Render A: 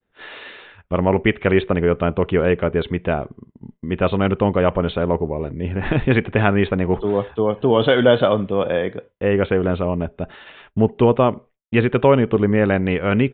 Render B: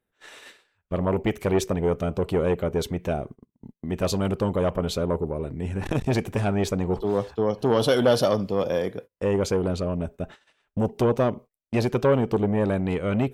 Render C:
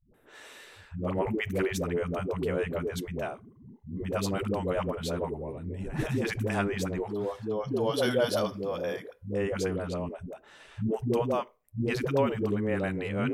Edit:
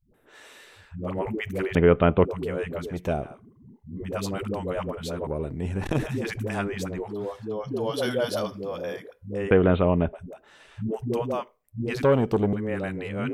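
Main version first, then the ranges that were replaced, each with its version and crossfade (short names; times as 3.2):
C
1.75–2.25 from A
2.91–3.32 from B, crossfade 0.24 s
5.27–5.99 from B
9.51–10.13 from A
12.03–12.53 from B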